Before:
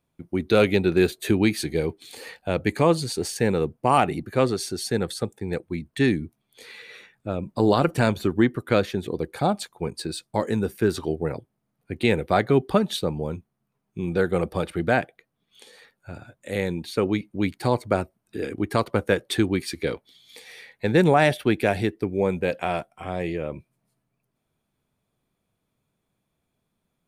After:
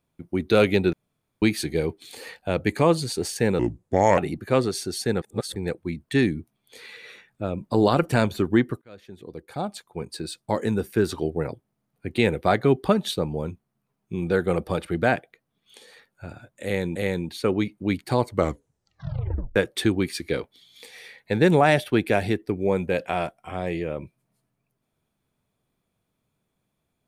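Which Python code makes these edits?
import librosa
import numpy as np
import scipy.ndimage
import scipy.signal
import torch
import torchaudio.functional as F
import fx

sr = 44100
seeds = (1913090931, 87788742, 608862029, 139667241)

y = fx.edit(x, sr, fx.room_tone_fill(start_s=0.93, length_s=0.49),
    fx.speed_span(start_s=3.59, length_s=0.44, speed=0.75),
    fx.reverse_span(start_s=5.07, length_s=0.34),
    fx.fade_in_span(start_s=8.67, length_s=1.81),
    fx.repeat(start_s=16.49, length_s=0.32, count=2),
    fx.tape_stop(start_s=17.82, length_s=1.27), tone=tone)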